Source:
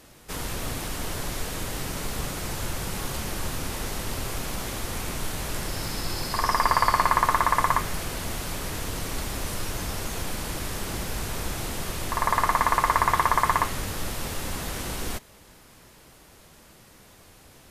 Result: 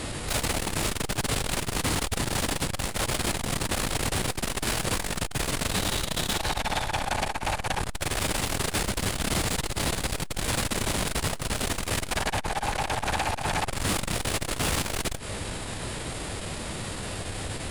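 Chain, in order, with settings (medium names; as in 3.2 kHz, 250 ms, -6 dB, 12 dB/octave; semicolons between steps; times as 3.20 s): compression 6:1, threshold -32 dBFS, peak gain reduction 15.5 dB; graphic EQ with 31 bands 100 Hz +6 dB, 1.6 kHz -4 dB, 8 kHz -8 dB; sine folder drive 17 dB, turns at -19.5 dBFS; formant shift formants -5 st; transformer saturation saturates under 120 Hz; trim -1.5 dB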